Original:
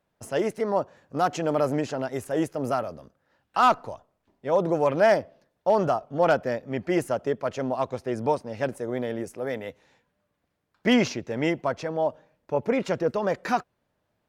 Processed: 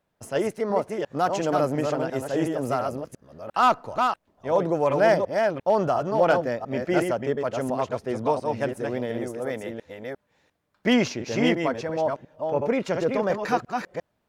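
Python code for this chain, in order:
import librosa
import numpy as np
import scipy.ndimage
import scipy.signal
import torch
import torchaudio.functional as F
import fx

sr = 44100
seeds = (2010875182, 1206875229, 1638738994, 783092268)

y = fx.reverse_delay(x, sr, ms=350, wet_db=-4)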